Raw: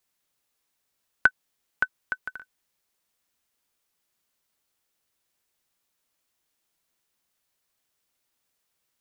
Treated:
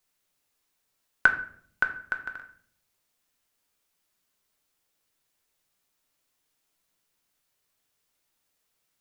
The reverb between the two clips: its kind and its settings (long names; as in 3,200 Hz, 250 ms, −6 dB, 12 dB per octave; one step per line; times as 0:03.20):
rectangular room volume 82 cubic metres, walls mixed, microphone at 0.41 metres